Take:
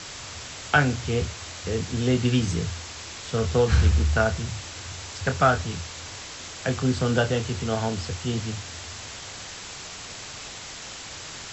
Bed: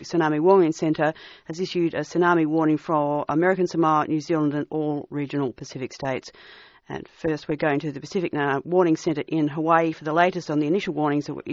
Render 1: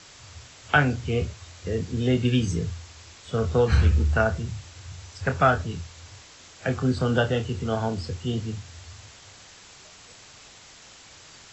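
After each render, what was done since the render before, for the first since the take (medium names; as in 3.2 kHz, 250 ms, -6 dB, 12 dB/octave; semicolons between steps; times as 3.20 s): noise print and reduce 10 dB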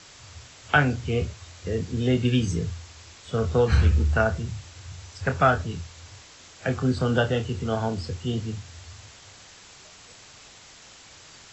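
no audible change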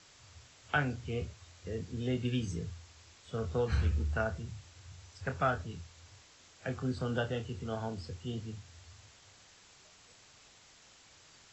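trim -11 dB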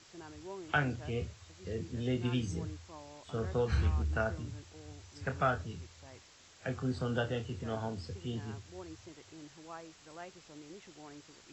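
add bed -29 dB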